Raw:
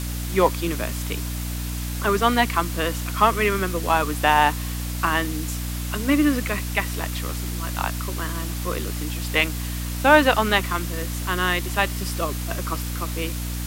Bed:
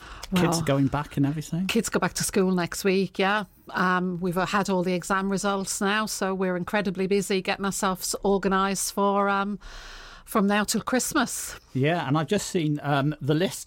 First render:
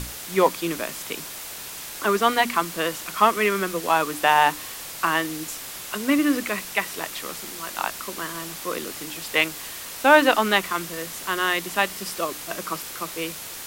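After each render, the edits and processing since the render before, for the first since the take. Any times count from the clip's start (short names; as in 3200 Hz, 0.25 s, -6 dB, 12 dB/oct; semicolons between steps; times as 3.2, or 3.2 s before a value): notches 60/120/180/240/300 Hz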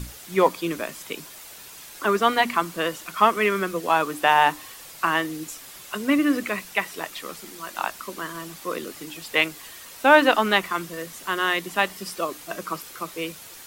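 denoiser 8 dB, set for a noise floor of -36 dBFS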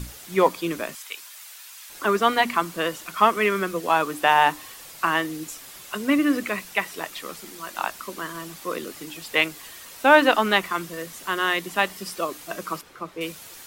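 0.95–1.9 HPF 1200 Hz; 12.81–13.21 LPF 1400 Hz 6 dB/oct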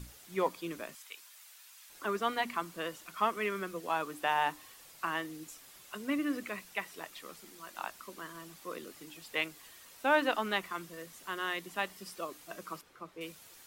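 gain -12.5 dB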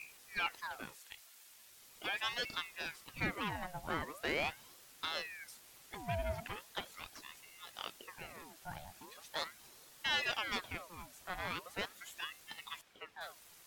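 tube stage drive 25 dB, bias 0.4; ring modulator with a swept carrier 1400 Hz, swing 75%, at 0.4 Hz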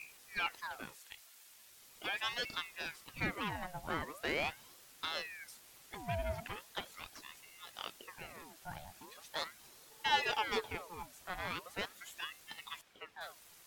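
9.9–11.03 small resonant body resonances 440/860 Hz, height 16 dB, ringing for 85 ms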